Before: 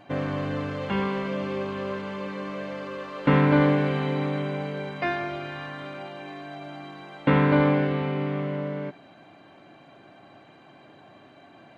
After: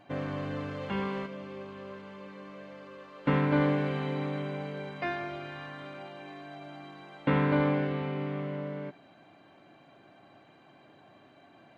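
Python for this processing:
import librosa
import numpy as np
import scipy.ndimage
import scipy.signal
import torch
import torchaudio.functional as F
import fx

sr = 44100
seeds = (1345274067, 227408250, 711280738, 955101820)

y = fx.upward_expand(x, sr, threshold_db=-29.0, expansion=1.5, at=(1.25, 3.52), fade=0.02)
y = y * librosa.db_to_amplitude(-6.0)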